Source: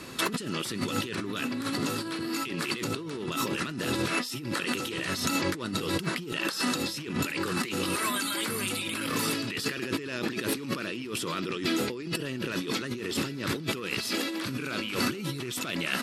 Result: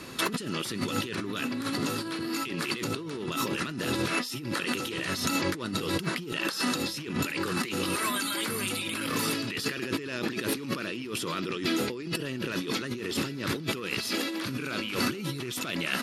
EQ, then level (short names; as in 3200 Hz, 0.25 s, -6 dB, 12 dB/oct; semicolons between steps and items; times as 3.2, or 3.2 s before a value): notch 7900 Hz, Q 14; 0.0 dB